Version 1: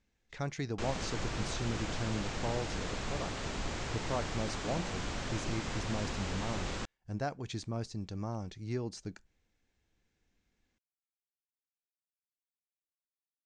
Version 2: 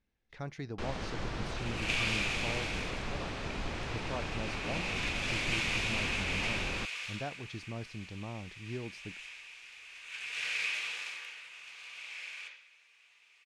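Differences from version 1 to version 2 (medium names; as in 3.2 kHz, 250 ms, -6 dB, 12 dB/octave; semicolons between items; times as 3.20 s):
speech -4.0 dB; second sound: unmuted; reverb: on, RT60 0.65 s; master: remove resonant low-pass 7.4 kHz, resonance Q 3.4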